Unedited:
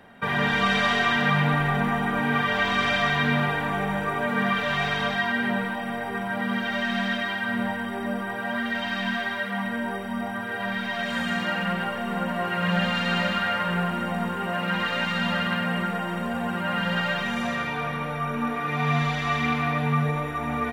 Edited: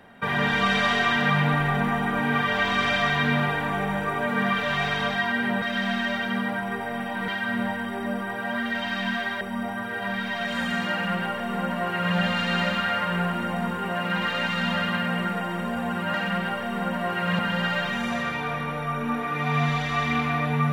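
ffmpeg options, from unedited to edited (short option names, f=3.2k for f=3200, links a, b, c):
-filter_complex "[0:a]asplit=6[a][b][c][d][e][f];[a]atrim=end=5.622[g];[b]atrim=start=5.618:end=7.282,asetpts=PTS-STARTPTS,areverse[h];[c]atrim=start=7.278:end=9.412[i];[d]atrim=start=9.988:end=16.722[j];[e]atrim=start=11.488:end=12.742[k];[f]atrim=start=16.718[l];[g][h]acrossfade=d=0.004:c1=hsin:c2=hsin[m];[m][i]acrossfade=d=0.004:c1=hsin:c2=hsin[n];[n][j]acrossfade=d=0.004:c1=hsin:c2=hsin[o];[o][k]acrossfade=d=0.004:c1=hsin:c2=hsin[p];[p][l]acrossfade=d=0.004:c1=hsin:c2=hsin"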